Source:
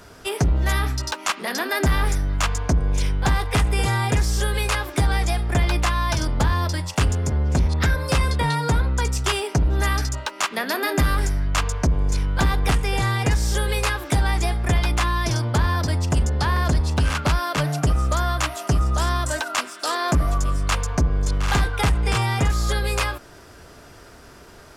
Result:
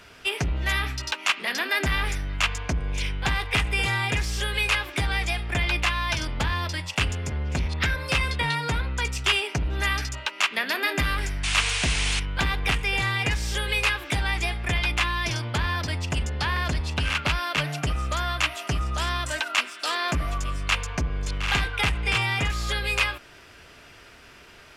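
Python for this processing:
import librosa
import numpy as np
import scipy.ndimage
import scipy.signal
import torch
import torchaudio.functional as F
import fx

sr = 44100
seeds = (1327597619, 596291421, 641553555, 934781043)

y = fx.spec_paint(x, sr, seeds[0], shape='noise', start_s=11.43, length_s=0.77, low_hz=650.0, high_hz=10000.0, level_db=-27.0)
y = fx.peak_eq(y, sr, hz=2600.0, db=14.0, octaves=1.3)
y = y * 10.0 ** (-7.5 / 20.0)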